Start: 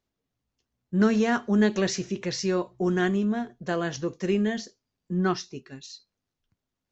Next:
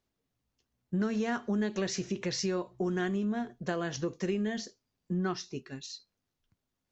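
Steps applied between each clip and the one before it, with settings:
downward compressor 4 to 1, threshold −29 dBFS, peak gain reduction 11 dB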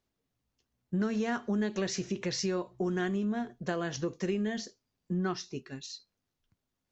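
no processing that can be heard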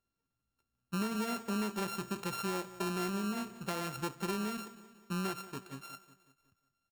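samples sorted by size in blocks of 32 samples
repeating echo 183 ms, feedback 51%, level −16 dB
level −4.5 dB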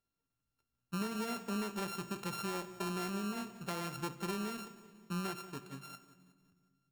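rectangular room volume 2,900 cubic metres, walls mixed, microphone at 0.41 metres
level −2.5 dB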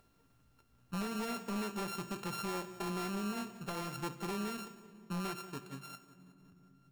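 upward compression, threshold −51 dBFS
wave folding −33 dBFS
one half of a high-frequency compander decoder only
level +1 dB

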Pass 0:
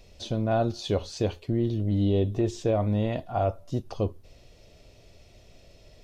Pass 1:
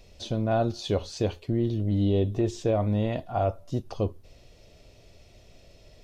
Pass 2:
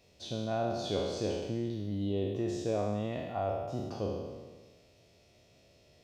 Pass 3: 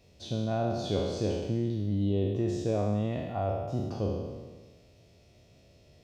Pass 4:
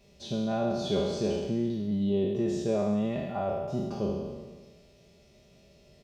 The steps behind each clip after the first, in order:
no processing that can be heard
peak hold with a decay on every bin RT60 1.44 s; high-pass filter 100 Hz 12 dB per octave; level −9 dB
low-shelf EQ 260 Hz +8.5 dB
comb filter 5 ms, depth 69%

